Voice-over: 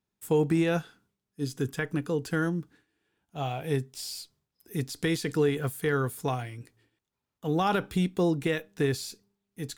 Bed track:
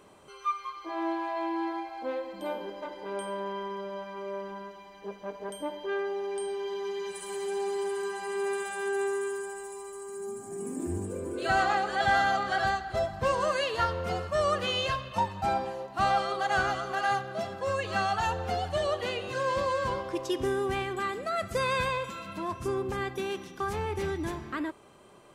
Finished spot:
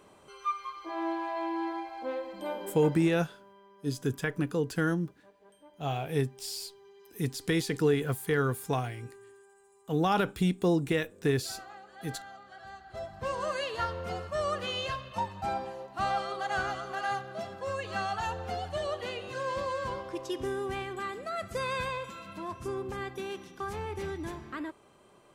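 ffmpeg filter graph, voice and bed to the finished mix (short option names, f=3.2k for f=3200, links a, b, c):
-filter_complex "[0:a]adelay=2450,volume=-0.5dB[a];[1:a]volume=15.5dB,afade=t=out:st=2.88:d=0.3:silence=0.1,afade=t=in:st=12.65:d=0.87:silence=0.141254[b];[a][b]amix=inputs=2:normalize=0"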